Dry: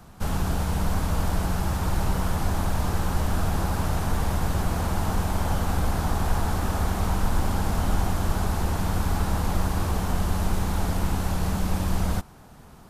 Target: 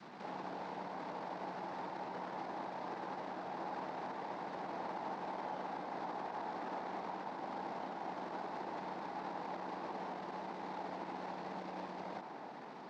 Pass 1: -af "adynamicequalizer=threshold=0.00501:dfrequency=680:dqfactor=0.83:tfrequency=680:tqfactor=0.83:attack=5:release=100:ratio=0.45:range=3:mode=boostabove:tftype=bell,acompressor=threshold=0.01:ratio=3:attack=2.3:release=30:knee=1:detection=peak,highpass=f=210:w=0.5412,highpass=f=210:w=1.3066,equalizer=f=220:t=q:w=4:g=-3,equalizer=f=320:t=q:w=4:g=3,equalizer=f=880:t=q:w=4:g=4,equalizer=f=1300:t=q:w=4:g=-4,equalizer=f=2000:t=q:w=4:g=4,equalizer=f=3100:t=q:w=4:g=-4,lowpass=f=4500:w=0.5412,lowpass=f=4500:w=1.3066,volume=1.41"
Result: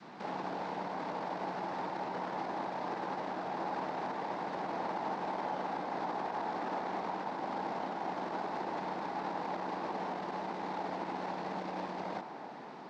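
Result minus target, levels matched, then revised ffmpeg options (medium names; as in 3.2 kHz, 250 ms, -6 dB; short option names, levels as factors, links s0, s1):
compression: peak gain reduction -5.5 dB
-af "adynamicequalizer=threshold=0.00501:dfrequency=680:dqfactor=0.83:tfrequency=680:tqfactor=0.83:attack=5:release=100:ratio=0.45:range=3:mode=boostabove:tftype=bell,acompressor=threshold=0.00376:ratio=3:attack=2.3:release=30:knee=1:detection=peak,highpass=f=210:w=0.5412,highpass=f=210:w=1.3066,equalizer=f=220:t=q:w=4:g=-3,equalizer=f=320:t=q:w=4:g=3,equalizer=f=880:t=q:w=4:g=4,equalizer=f=1300:t=q:w=4:g=-4,equalizer=f=2000:t=q:w=4:g=4,equalizer=f=3100:t=q:w=4:g=-4,lowpass=f=4500:w=0.5412,lowpass=f=4500:w=1.3066,volume=1.41"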